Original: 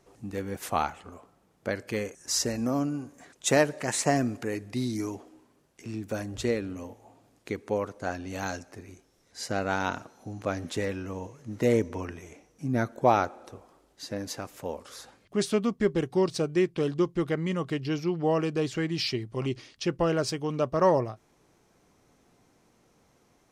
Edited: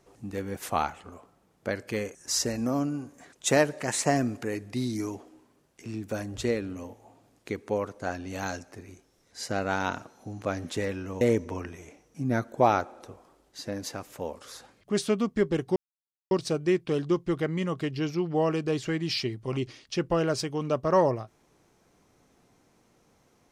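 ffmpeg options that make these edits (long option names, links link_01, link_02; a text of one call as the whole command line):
ffmpeg -i in.wav -filter_complex "[0:a]asplit=3[link_01][link_02][link_03];[link_01]atrim=end=11.212[link_04];[link_02]atrim=start=11.648:end=16.2,asetpts=PTS-STARTPTS,afade=type=out:start_time=4.548:duration=0.004:curve=hsin,apad=pad_dur=0.55[link_05];[link_03]atrim=start=16.2,asetpts=PTS-STARTPTS,afade=type=in:duration=0.004:curve=hsin[link_06];[link_05][link_06]concat=n=2:v=0:a=1[link_07];[link_04][link_07]acrossfade=duration=0.004:curve1=hsin:curve2=hsin" out.wav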